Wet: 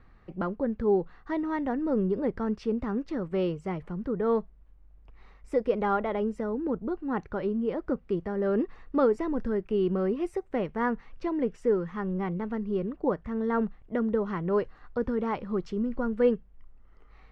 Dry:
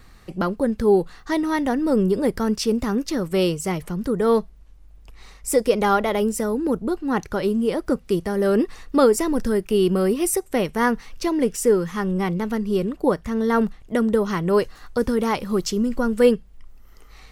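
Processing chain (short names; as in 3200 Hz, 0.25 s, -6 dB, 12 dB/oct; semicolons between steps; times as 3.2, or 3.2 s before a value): LPF 1900 Hz 12 dB/oct; gain -7.5 dB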